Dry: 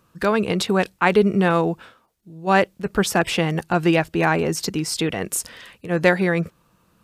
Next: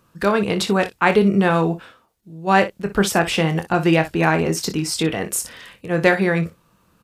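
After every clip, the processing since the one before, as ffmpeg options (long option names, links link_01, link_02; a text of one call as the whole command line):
ffmpeg -i in.wav -af "aecho=1:1:25|60:0.355|0.2,volume=1dB" out.wav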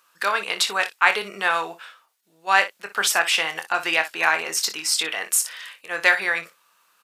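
ffmpeg -i in.wav -af "highpass=1200,volume=3.5dB" out.wav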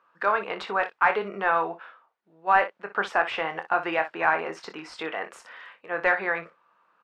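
ffmpeg -i in.wav -af "acontrast=49,lowpass=1200,volume=-3dB" out.wav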